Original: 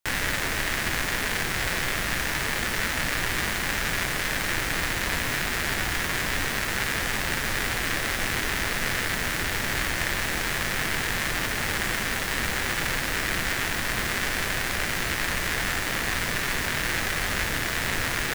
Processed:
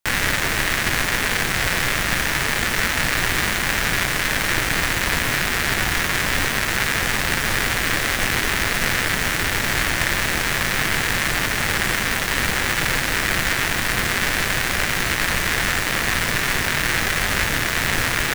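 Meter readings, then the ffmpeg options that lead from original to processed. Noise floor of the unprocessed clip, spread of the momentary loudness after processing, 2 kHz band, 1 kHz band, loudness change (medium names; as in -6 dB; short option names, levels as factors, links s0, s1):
-29 dBFS, 1 LU, +6.5 dB, +6.0 dB, +6.0 dB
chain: -filter_complex "[0:a]asplit=2[s0][s1];[s1]acrusher=bits=3:mix=0:aa=0.5,volume=0.708[s2];[s0][s2]amix=inputs=2:normalize=0,equalizer=f=130:w=1.5:g=2,volume=1.26"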